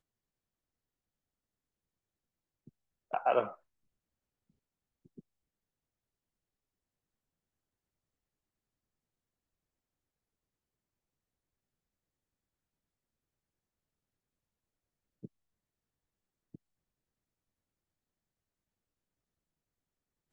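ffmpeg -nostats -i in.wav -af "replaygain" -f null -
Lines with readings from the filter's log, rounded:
track_gain = +64.0 dB
track_peak = 0.132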